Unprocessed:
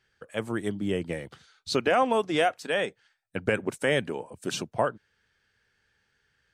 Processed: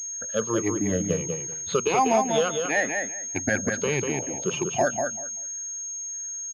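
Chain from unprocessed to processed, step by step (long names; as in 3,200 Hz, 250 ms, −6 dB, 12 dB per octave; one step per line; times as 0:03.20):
rippled gain that drifts along the octave scale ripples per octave 0.72, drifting −1.5 Hz, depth 21 dB
brickwall limiter −12.5 dBFS, peak gain reduction 7.5 dB
on a send: repeating echo 194 ms, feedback 19%, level −5 dB
on the sum: switching amplifier with a slow clock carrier 6,500 Hz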